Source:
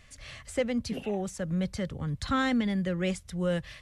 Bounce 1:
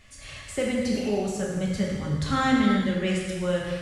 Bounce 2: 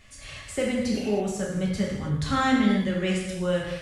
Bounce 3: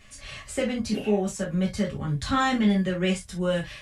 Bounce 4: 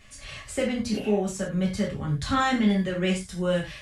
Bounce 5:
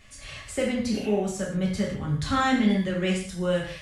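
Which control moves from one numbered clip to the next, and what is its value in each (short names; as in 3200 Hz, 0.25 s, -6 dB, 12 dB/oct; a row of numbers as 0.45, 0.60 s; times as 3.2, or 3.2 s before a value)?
non-linear reverb, gate: 530, 350, 90, 130, 210 ms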